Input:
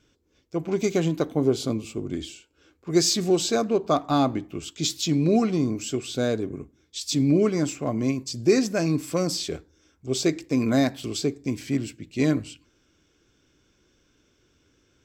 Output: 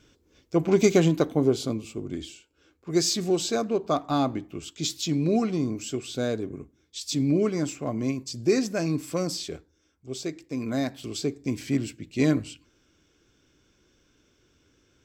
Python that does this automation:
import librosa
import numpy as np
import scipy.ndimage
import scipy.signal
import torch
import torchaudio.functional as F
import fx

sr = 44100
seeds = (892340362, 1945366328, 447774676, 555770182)

y = fx.gain(x, sr, db=fx.line((0.84, 5.0), (1.79, -3.0), (9.22, -3.0), (10.33, -10.0), (11.61, 0.0)))